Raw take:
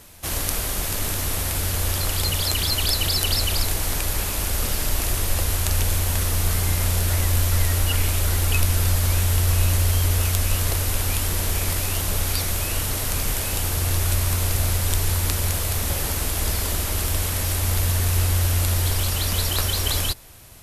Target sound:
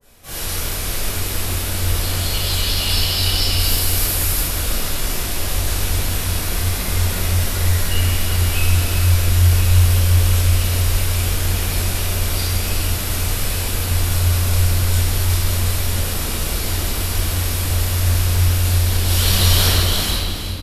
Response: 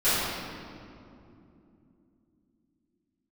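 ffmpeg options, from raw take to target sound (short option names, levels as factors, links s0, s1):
-filter_complex "[0:a]asettb=1/sr,asplit=3[s0][s1][s2];[s0]atrim=end=3.584[s3];[s1]atrim=start=3.58:end=4.4,asetpts=PTS-STARTPTS,afade=t=in:d=0.004:c=qsin,afade=t=out:st=0.816:d=0.004:c=qsin,highshelf=f=8300:g=10[s4];[s2]atrim=start=4.396[s5];[s3][s4]acrossfade=d=0.004:c1=hsin:c2=qsin[s6];[s6][s5]acrossfade=d=0.004:c1=qsin:c2=hsin,asettb=1/sr,asplit=3[s7][s8][s9];[s7]atrim=end=19.074[s10];[s8]atrim=start=19.07:end=19.69,asetpts=PTS-STARTPTS,afade=t=in:d=0.004:c=qsin,afade=t=out:st=0.616:d=0.004:c=qsin,acontrast=48[s11];[s9]atrim=start=19.686[s12];[s10][s11]acrossfade=d=0.004:c1=hsin:c2=qsin[s13];[s13][s12]acrossfade=d=0.004:c1=qsin:c2=hsin,flanger=delay=19:depth=7.1:speed=2.9,aecho=1:1:364:0.355[s14];[1:a]atrim=start_sample=2205[s15];[s14][s15]afir=irnorm=-1:irlink=0,adynamicequalizer=threshold=0.0355:dfrequency=1800:dqfactor=0.7:tfrequency=1800:tqfactor=0.7:attack=5:release=100:ratio=0.375:range=2.5:mode=boostabove:tftype=highshelf,volume=0.224"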